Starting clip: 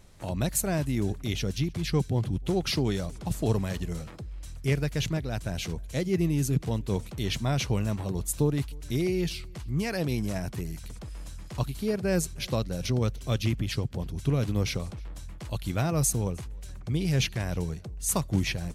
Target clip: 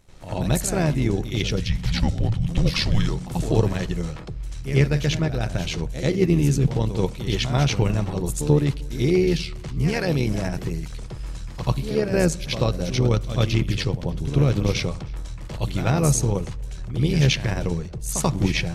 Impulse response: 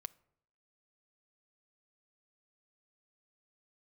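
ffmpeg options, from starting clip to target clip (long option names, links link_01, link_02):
-filter_complex "[0:a]asplit=3[link_01][link_02][link_03];[link_01]afade=type=out:start_time=1.56:duration=0.02[link_04];[link_02]afreqshift=-220,afade=type=in:start_time=1.56:duration=0.02,afade=type=out:start_time=3.2:duration=0.02[link_05];[link_03]afade=type=in:start_time=3.2:duration=0.02[link_06];[link_04][link_05][link_06]amix=inputs=3:normalize=0,tremolo=f=75:d=0.621,asplit=2[link_07][link_08];[1:a]atrim=start_sample=2205,lowpass=6500,adelay=87[link_09];[link_08][link_09]afir=irnorm=-1:irlink=0,volume=15dB[link_10];[link_07][link_10]amix=inputs=2:normalize=0,volume=-1.5dB"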